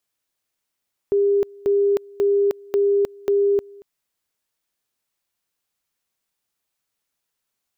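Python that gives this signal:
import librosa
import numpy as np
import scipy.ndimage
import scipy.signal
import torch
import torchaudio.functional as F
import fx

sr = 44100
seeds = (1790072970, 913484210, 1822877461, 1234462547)

y = fx.two_level_tone(sr, hz=402.0, level_db=-14.5, drop_db=25.0, high_s=0.31, low_s=0.23, rounds=5)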